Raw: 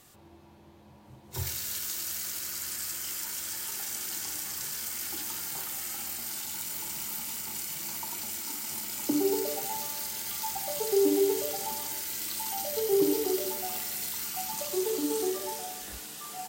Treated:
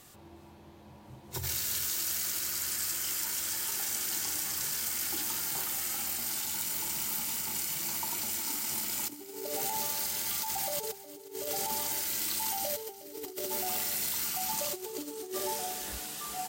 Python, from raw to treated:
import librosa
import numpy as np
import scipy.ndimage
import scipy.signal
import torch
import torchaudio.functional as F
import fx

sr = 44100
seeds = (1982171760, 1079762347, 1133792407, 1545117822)

y = fx.over_compress(x, sr, threshold_db=-34.0, ratio=-0.5)
y = y + 10.0 ** (-16.5 / 20.0) * np.pad(y, (int(363 * sr / 1000.0), 0))[:len(y)]